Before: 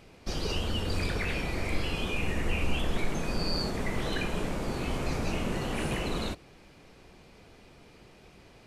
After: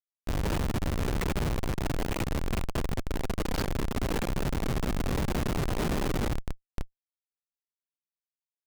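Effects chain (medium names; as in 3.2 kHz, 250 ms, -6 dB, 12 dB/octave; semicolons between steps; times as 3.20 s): bucket-brigade echo 303 ms, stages 1024, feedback 82%, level -10.5 dB; Schmitt trigger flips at -30 dBFS; trim +2 dB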